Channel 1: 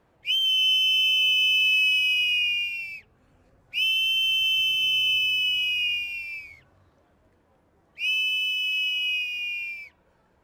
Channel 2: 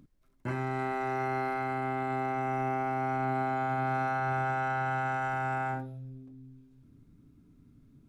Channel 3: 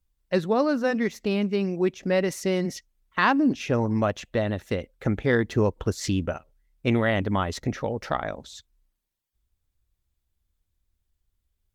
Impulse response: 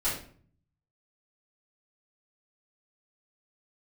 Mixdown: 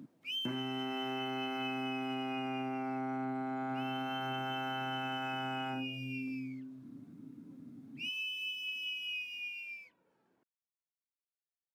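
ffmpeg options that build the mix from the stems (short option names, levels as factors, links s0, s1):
-filter_complex "[0:a]aphaser=in_gain=1:out_gain=1:delay=3.5:decay=0.36:speed=0.23:type=triangular,volume=0.237[s0];[1:a]volume=1.33[s1];[s0][s1]amix=inputs=2:normalize=0,equalizer=f=260:t=o:w=0.68:g=10,acompressor=threshold=0.0178:ratio=6,volume=1,highpass=f=130:w=0.5412,highpass=f=130:w=1.3066"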